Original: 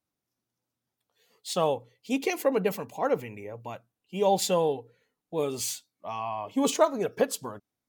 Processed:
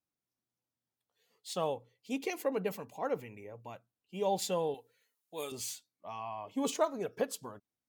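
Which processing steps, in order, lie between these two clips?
0:04.74–0:05.52: spectral tilt +4 dB per octave
level −8 dB

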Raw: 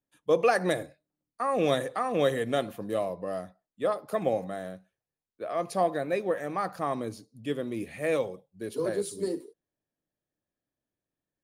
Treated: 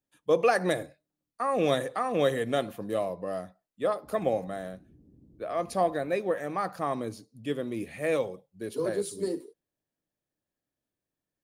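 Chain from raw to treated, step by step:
0:04.04–0:06.09: noise in a band 41–310 Hz −57 dBFS

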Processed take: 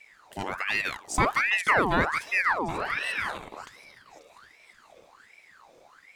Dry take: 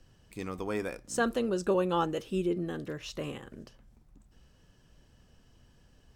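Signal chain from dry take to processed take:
healed spectral selection 0:02.75–0:03.27, 290–5,600 Hz before
delay with a high-pass on its return 537 ms, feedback 55%, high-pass 1,900 Hz, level −12 dB
ring modulator whose carrier an LFO sweeps 1,400 Hz, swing 65%, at 1.3 Hz
level +7.5 dB

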